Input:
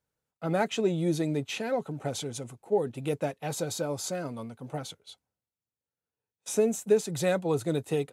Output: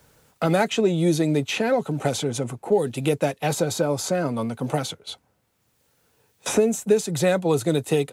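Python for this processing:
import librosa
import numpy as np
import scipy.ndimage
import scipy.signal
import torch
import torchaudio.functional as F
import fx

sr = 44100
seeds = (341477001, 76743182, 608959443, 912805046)

y = fx.band_squash(x, sr, depth_pct=70)
y = F.gain(torch.from_numpy(y), 7.0).numpy()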